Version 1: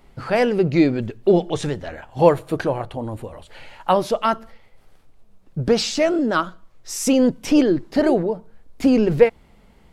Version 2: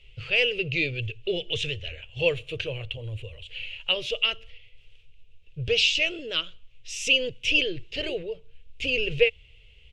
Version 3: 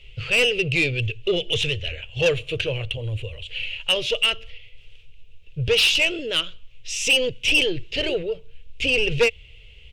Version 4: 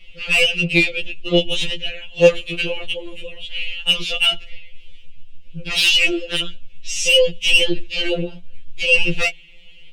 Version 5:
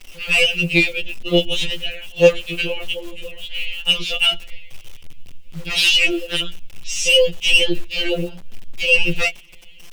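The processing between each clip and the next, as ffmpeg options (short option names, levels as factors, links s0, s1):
-af "firequalizer=gain_entry='entry(110,0);entry(210,-29);entry(460,-7);entry(790,-27);entry(1700,-13);entry(2700,15);entry(4400,-5);entry(6500,-6);entry(12000,-23)':delay=0.05:min_phase=1"
-af "asoftclip=type=tanh:threshold=0.112,volume=2.24"
-af "afftfilt=real='re*2.83*eq(mod(b,8),0)':imag='im*2.83*eq(mod(b,8),0)':win_size=2048:overlap=0.75,volume=1.88"
-af "acrusher=bits=8:dc=4:mix=0:aa=0.000001"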